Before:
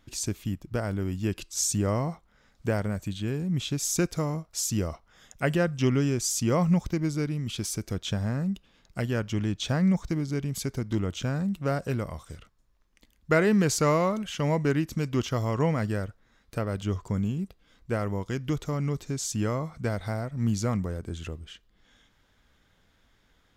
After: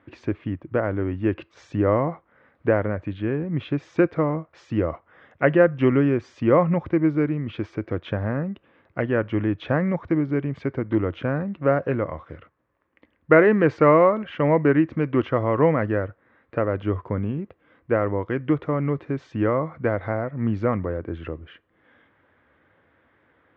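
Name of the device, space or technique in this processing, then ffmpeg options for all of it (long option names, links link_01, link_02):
bass cabinet: -af "highpass=frequency=87:width=0.5412,highpass=frequency=87:width=1.3066,equalizer=frequency=120:width_type=q:width=4:gain=-5,equalizer=frequency=190:width_type=q:width=4:gain=-8,equalizer=frequency=320:width_type=q:width=4:gain=5,equalizer=frequency=530:width_type=q:width=4:gain=6,equalizer=frequency=1100:width_type=q:width=4:gain=3,equalizer=frequency=1800:width_type=q:width=4:gain=3,lowpass=frequency=2300:width=0.5412,lowpass=frequency=2300:width=1.3066,volume=5.5dB"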